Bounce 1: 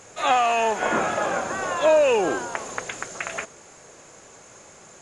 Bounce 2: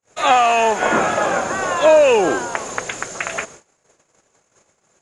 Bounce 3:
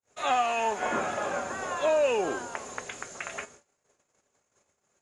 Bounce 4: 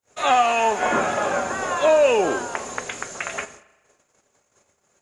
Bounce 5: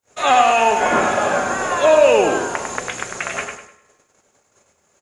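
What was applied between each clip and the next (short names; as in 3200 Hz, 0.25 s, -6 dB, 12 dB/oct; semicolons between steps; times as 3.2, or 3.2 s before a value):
gate -44 dBFS, range -44 dB; gain +6 dB
resonator 82 Hz, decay 0.15 s, harmonics odd, mix 60%; gain -7.5 dB
spring tank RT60 1.1 s, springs 38 ms, chirp 75 ms, DRR 16 dB; gain +8 dB
feedback echo 0.1 s, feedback 31%, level -6 dB; gain +3.5 dB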